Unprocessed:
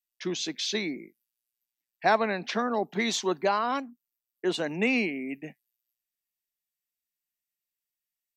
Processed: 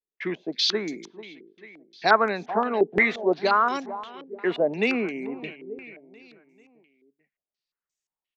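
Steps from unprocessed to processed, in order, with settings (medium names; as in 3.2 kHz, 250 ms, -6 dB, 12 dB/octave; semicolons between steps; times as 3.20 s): peaking EQ 420 Hz +5.5 dB 0.28 oct; feedback delay 441 ms, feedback 49%, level -16 dB; step-sequenced low-pass 5.7 Hz 430–6700 Hz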